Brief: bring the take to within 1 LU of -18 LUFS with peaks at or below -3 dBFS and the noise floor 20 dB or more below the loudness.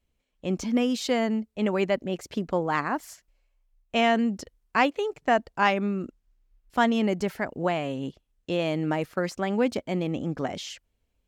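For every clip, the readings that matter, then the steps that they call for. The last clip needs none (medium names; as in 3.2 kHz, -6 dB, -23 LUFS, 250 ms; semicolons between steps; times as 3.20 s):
loudness -27.0 LUFS; peak level -9.5 dBFS; loudness target -18.0 LUFS
-> trim +9 dB; peak limiter -3 dBFS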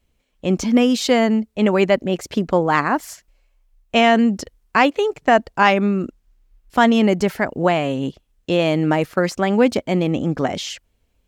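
loudness -18.5 LUFS; peak level -3.0 dBFS; noise floor -67 dBFS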